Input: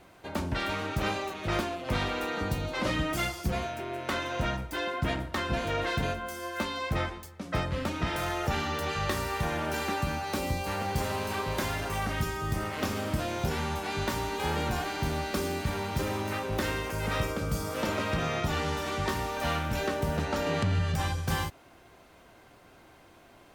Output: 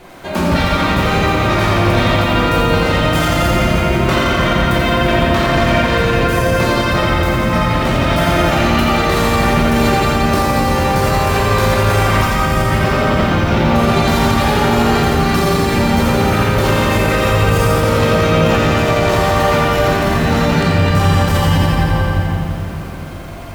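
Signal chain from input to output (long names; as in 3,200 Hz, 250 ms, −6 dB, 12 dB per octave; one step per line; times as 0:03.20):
0:12.77–0:13.75: low-pass filter 4,100 Hz 12 dB per octave
rectangular room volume 190 cubic metres, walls hard, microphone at 0.93 metres
boost into a limiter +19 dB
feedback echo at a low word length 86 ms, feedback 80%, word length 6 bits, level −6 dB
level −6 dB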